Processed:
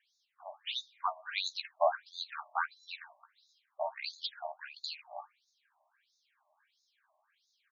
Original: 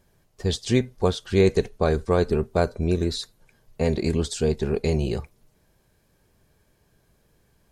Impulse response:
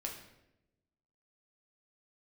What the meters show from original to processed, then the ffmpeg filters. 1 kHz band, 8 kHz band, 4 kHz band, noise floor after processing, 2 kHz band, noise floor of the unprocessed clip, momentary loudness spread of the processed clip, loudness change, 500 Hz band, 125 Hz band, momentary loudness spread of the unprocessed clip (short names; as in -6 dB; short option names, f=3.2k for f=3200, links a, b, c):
-2.5 dB, -18.0 dB, -5.0 dB, -79 dBFS, -5.0 dB, -65 dBFS, 18 LU, -13.0 dB, -16.5 dB, under -40 dB, 8 LU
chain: -filter_complex "[0:a]asplit=2[a][b];[b]adelay=14,volume=-7dB[c];[a][c]amix=inputs=2:normalize=0,asplit=2[d][e];[1:a]atrim=start_sample=2205[f];[e][f]afir=irnorm=-1:irlink=0,volume=-14.5dB[g];[d][g]amix=inputs=2:normalize=0,afftfilt=real='re*between(b*sr/1024,790*pow(5000/790,0.5+0.5*sin(2*PI*1.5*pts/sr))/1.41,790*pow(5000/790,0.5+0.5*sin(2*PI*1.5*pts/sr))*1.41)':imag='im*between(b*sr/1024,790*pow(5000/790,0.5+0.5*sin(2*PI*1.5*pts/sr))/1.41,790*pow(5000/790,0.5+0.5*sin(2*PI*1.5*pts/sr))*1.41)':win_size=1024:overlap=0.75"